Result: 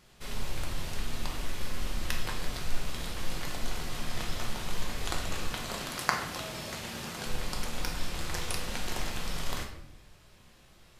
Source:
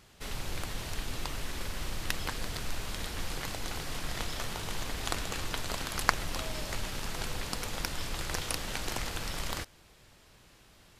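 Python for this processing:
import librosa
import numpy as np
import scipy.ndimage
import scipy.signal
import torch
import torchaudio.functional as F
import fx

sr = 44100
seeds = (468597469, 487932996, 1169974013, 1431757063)

y = fx.highpass(x, sr, hz=110.0, slope=12, at=(5.46, 7.26))
y = fx.room_shoebox(y, sr, seeds[0], volume_m3=220.0, walls='mixed', distance_m=0.95)
y = y * 10.0 ** (-3.0 / 20.0)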